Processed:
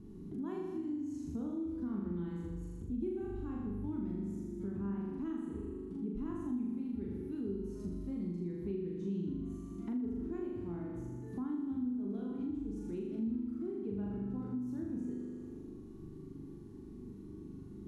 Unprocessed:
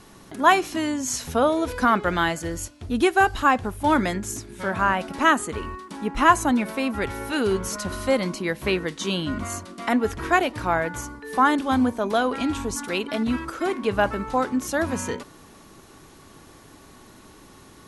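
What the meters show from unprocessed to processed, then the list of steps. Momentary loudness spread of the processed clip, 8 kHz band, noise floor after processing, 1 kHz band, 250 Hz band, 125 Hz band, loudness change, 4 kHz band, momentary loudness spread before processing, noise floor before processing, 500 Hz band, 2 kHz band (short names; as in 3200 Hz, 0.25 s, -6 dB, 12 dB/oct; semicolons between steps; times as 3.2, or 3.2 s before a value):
11 LU, under -35 dB, -49 dBFS, -34.5 dB, -10.5 dB, -9.0 dB, -16.5 dB, under -35 dB, 11 LU, -49 dBFS, -18.0 dB, under -35 dB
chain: EQ curve 390 Hz 0 dB, 560 Hz -25 dB, 880 Hz -21 dB, 1600 Hz -27 dB; flutter echo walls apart 6.9 m, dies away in 1.2 s; compressor 3:1, threshold -40 dBFS, peak gain reduction 19.5 dB; bell 200 Hz +4.5 dB 0.54 oct; gain -2.5 dB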